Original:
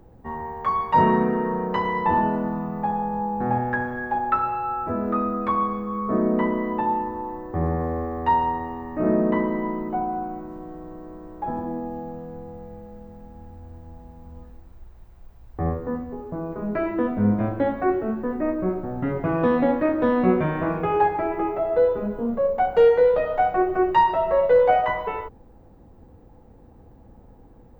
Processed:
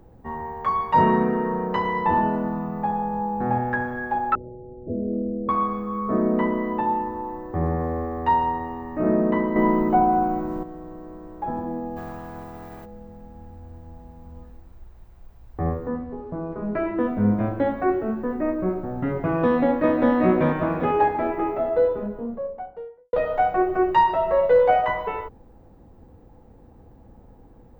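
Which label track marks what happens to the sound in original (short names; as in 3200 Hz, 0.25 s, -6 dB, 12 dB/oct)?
4.350000	5.490000	steep low-pass 570 Hz 48 dB/oct
9.560000	10.630000	gain +8 dB
11.960000	12.840000	spectral limiter ceiling under each frame's peak by 22 dB
15.880000	17.000000	air absorption 110 m
19.440000	20.130000	echo throw 0.39 s, feedback 55%, level -4 dB
21.520000	23.130000	studio fade out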